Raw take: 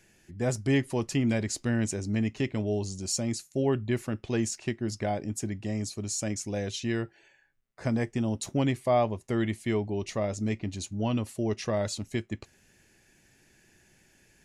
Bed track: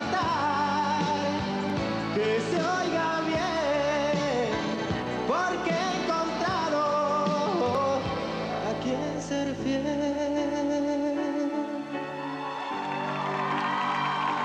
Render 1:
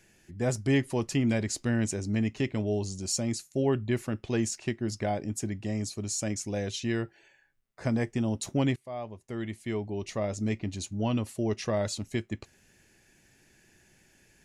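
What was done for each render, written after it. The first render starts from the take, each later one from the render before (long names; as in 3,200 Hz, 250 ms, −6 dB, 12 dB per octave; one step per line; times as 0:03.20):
0:08.76–0:10.47: fade in, from −19.5 dB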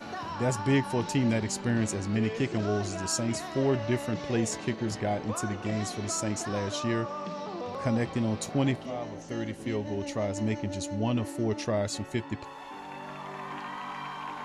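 mix in bed track −10.5 dB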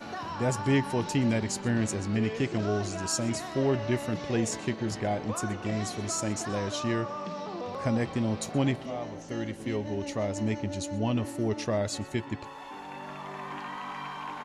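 single-tap delay 124 ms −22.5 dB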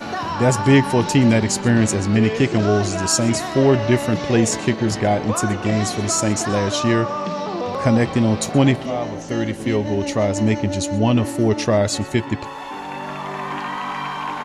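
level +11.5 dB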